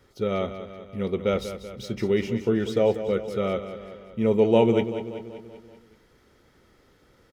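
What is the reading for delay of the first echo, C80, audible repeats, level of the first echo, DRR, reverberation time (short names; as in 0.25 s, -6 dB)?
0.191 s, none, 5, -11.0 dB, none, none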